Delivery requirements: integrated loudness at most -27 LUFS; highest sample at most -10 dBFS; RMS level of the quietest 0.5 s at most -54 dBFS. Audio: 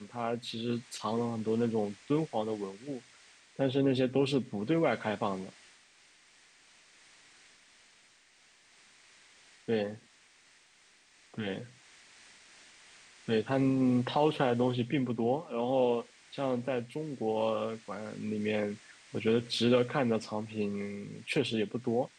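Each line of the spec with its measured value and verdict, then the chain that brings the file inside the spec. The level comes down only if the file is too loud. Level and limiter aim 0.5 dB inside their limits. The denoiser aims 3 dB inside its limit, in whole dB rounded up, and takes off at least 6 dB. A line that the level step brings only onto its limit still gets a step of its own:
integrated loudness -32.0 LUFS: pass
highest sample -14.0 dBFS: pass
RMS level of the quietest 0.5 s -63 dBFS: pass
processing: none needed

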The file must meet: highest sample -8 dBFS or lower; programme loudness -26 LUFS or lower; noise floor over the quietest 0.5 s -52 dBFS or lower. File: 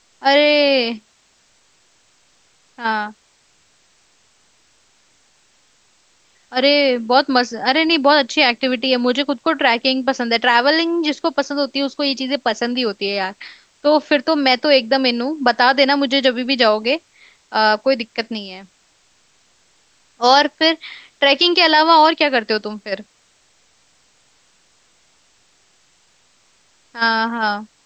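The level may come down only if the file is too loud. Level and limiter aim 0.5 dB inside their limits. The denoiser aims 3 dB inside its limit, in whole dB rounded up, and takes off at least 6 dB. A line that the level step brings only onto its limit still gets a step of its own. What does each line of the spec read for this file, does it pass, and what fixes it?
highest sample -1.5 dBFS: fail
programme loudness -16.0 LUFS: fail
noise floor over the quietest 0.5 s -58 dBFS: pass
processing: trim -10.5 dB

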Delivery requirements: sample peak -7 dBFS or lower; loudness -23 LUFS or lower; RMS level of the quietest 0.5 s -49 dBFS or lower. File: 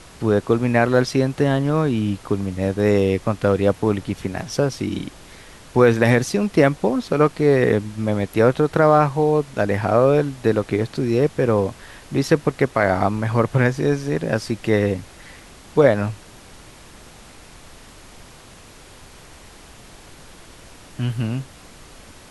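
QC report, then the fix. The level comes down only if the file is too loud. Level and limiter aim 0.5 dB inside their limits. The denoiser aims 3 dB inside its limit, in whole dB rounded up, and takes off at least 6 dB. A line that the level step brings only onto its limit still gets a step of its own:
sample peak -3.0 dBFS: fail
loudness -19.5 LUFS: fail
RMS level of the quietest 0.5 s -44 dBFS: fail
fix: noise reduction 6 dB, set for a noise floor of -44 dBFS; trim -4 dB; peak limiter -7.5 dBFS

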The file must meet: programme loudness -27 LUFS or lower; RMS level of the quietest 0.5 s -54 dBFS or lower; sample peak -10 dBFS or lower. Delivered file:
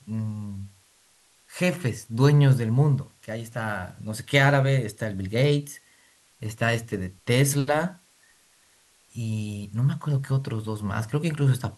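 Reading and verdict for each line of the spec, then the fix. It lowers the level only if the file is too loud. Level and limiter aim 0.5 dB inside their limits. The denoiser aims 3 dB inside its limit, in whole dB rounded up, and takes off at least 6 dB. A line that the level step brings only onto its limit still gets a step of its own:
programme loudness -25.0 LUFS: fail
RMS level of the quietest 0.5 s -61 dBFS: pass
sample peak -7.5 dBFS: fail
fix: trim -2.5 dB; peak limiter -10.5 dBFS

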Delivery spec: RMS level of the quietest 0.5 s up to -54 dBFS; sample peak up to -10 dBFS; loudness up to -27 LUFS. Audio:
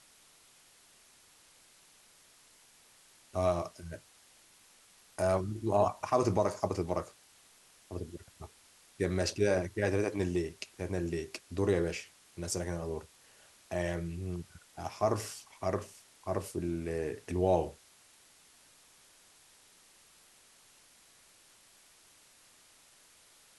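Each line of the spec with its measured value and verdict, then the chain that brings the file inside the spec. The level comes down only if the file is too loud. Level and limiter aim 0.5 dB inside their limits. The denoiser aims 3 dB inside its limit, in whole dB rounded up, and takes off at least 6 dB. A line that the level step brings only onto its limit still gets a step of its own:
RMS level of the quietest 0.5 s -62 dBFS: pass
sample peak -15.0 dBFS: pass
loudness -34.0 LUFS: pass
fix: none needed

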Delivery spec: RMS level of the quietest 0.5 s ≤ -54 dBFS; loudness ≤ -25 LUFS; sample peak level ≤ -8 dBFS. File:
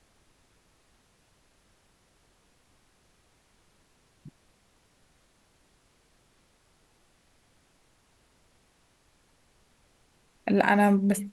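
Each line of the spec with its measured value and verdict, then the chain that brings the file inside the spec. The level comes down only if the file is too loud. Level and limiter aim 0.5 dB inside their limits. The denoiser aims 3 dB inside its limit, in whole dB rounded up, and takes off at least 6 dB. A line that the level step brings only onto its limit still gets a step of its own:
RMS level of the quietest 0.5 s -66 dBFS: pass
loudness -24.0 LUFS: fail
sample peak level -6.5 dBFS: fail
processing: trim -1.5 dB; peak limiter -8.5 dBFS

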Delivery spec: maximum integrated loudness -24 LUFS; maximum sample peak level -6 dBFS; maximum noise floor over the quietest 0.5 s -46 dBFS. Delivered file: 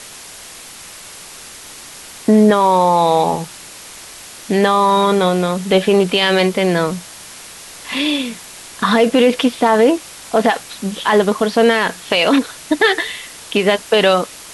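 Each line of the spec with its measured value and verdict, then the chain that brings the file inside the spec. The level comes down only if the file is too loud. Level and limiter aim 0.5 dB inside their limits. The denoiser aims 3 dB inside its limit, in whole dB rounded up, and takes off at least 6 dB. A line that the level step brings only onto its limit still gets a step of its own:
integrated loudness -15.0 LUFS: fail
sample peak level -3.0 dBFS: fail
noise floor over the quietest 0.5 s -36 dBFS: fail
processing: noise reduction 6 dB, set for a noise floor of -36 dBFS; trim -9.5 dB

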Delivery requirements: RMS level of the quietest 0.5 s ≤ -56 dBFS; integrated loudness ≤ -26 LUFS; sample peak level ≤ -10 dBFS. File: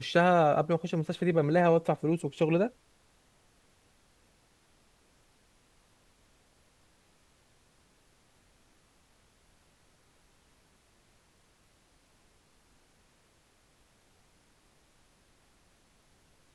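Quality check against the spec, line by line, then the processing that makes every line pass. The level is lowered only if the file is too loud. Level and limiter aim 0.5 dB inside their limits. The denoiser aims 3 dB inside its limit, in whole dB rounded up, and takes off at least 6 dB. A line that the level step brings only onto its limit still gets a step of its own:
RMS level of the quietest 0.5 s -66 dBFS: pass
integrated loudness -27.5 LUFS: pass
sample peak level -12.0 dBFS: pass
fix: none needed

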